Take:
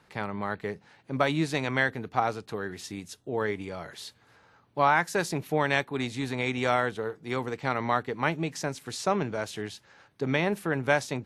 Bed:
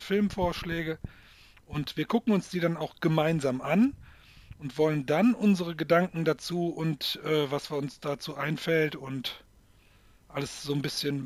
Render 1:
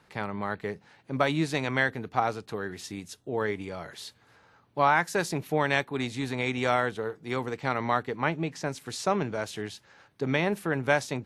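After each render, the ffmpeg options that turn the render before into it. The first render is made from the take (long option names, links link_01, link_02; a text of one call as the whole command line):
ffmpeg -i in.wav -filter_complex "[0:a]asettb=1/sr,asplit=3[link_01][link_02][link_03];[link_01]atrim=end=8.164[link_04];[link_02]atrim=start=8.16:end=8.66,asetpts=PTS-STARTPTS,afade=type=in:duration=0.004:curve=qsin,afade=type=out:start_time=0.496:duration=0.004:curve=qsin,lowpass=frequency=3700:poles=1[link_05];[link_03]atrim=start=8.656[link_06];[link_04][link_05]acrossfade=duration=0.004:curve1=hsin:curve2=qsin[link_07];[link_07][link_06]acrossfade=duration=0.004:curve1=qsin:curve2=hsin" out.wav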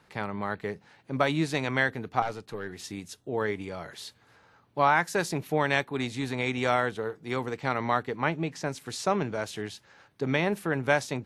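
ffmpeg -i in.wav -filter_complex "[0:a]asettb=1/sr,asplit=3[link_01][link_02][link_03];[link_01]atrim=end=2.224[link_04];[link_02]atrim=start=2.22:end=2.8,asetpts=PTS-STARTPTS,afade=type=in:duration=0.004:curve=qsin,afade=type=out:start_time=0.576:duration=0.004:curve=qsin,aeval=exprs='(tanh(15.8*val(0)+0.5)-tanh(0.5))/15.8':channel_layout=same[link_05];[link_03]atrim=start=2.796[link_06];[link_04][link_05]acrossfade=duration=0.004:curve1=hsin:curve2=qsin[link_07];[link_07][link_06]acrossfade=duration=0.004:curve1=qsin:curve2=hsin" out.wav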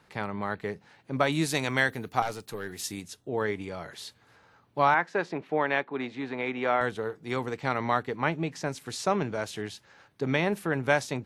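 ffmpeg -i in.wav -filter_complex "[0:a]asettb=1/sr,asplit=3[link_01][link_02][link_03];[link_01]atrim=end=1.324[link_04];[link_02]atrim=start=1.32:end=3.02,asetpts=PTS-STARTPTS,afade=type=in:duration=0.004:curve=qsin,afade=type=out:start_time=1.696:duration=0.004:curve=qsin,aemphasis=mode=production:type=50fm[link_05];[link_03]atrim=start=3.016[link_06];[link_04][link_05]acrossfade=duration=0.004:curve1=hsin:curve2=qsin[link_07];[link_07][link_06]acrossfade=duration=0.004:curve1=qsin:curve2=hsin,asettb=1/sr,asplit=3[link_08][link_09][link_10];[link_08]atrim=end=4.944[link_11];[link_09]atrim=start=4.94:end=6.81,asetpts=PTS-STARTPTS,afade=type=in:duration=0.004:curve=qsin,afade=type=out:start_time=1.866:duration=0.004:curve=qsin,highpass=240,lowpass=2400[link_12];[link_10]atrim=start=6.806[link_13];[link_11][link_12]acrossfade=duration=0.004:curve1=hsin:curve2=qsin[link_14];[link_14][link_13]acrossfade=duration=0.004:curve1=qsin:curve2=hsin" out.wav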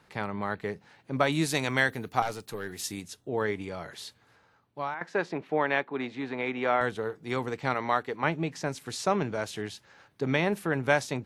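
ffmpeg -i in.wav -filter_complex "[0:a]asettb=1/sr,asplit=3[link_01][link_02][link_03];[link_01]atrim=end=7.744[link_04];[link_02]atrim=start=7.74:end=8.24,asetpts=PTS-STARTPTS,afade=type=in:duration=0.004:curve=qsin,afade=type=out:start_time=0.496:duration=0.004:curve=qsin,bass=frequency=250:gain=-8,treble=frequency=4000:gain=0[link_05];[link_03]atrim=start=8.236[link_06];[link_04][link_05]acrossfade=duration=0.004:curve1=hsin:curve2=qsin[link_07];[link_07][link_06]acrossfade=duration=0.004:curve1=qsin:curve2=hsin,asplit=2[link_08][link_09];[link_08]atrim=end=5.01,asetpts=PTS-STARTPTS,afade=type=out:start_time=4:duration=1.01:silence=0.158489[link_10];[link_09]atrim=start=5.01,asetpts=PTS-STARTPTS,afade=type=in:duration=0.004:curve=hsin:silence=0.158489[link_11];[link_10][link_11]concat=n=2:v=0:a=1" out.wav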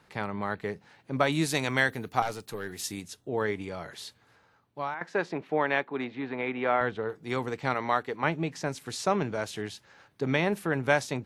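ffmpeg -i in.wav -filter_complex "[0:a]asettb=1/sr,asplit=3[link_01][link_02][link_03];[link_01]atrim=end=6.044[link_04];[link_02]atrim=start=6.04:end=7.09,asetpts=PTS-STARTPTS,afade=type=in:duration=0.004:curve=qsin,afade=type=out:start_time=1.046:duration=0.004:curve=qsin,lowpass=3400[link_05];[link_03]atrim=start=7.086[link_06];[link_04][link_05]acrossfade=duration=0.004:curve1=hsin:curve2=qsin[link_07];[link_07][link_06]acrossfade=duration=0.004:curve1=qsin:curve2=hsin" out.wav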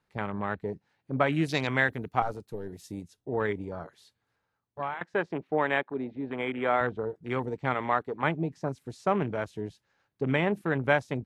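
ffmpeg -i in.wav -af "afwtdn=0.0158,lowshelf=frequency=68:gain=7" out.wav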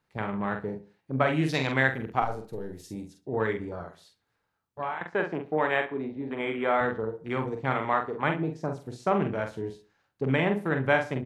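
ffmpeg -i in.wav -filter_complex "[0:a]asplit=2[link_01][link_02];[link_02]adelay=45,volume=-5.5dB[link_03];[link_01][link_03]amix=inputs=2:normalize=0,asplit=2[link_04][link_05];[link_05]adelay=69,lowpass=frequency=3900:poles=1,volume=-15dB,asplit=2[link_06][link_07];[link_07]adelay=69,lowpass=frequency=3900:poles=1,volume=0.34,asplit=2[link_08][link_09];[link_09]adelay=69,lowpass=frequency=3900:poles=1,volume=0.34[link_10];[link_04][link_06][link_08][link_10]amix=inputs=4:normalize=0" out.wav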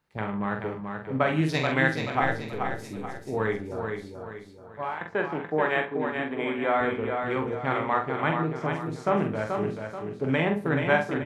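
ffmpeg -i in.wav -filter_complex "[0:a]asplit=2[link_01][link_02];[link_02]adelay=19,volume=-11dB[link_03];[link_01][link_03]amix=inputs=2:normalize=0,aecho=1:1:432|864|1296|1728|2160:0.531|0.212|0.0849|0.034|0.0136" out.wav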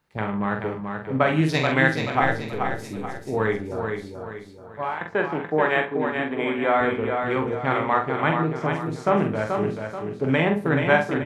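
ffmpeg -i in.wav -af "volume=4dB" out.wav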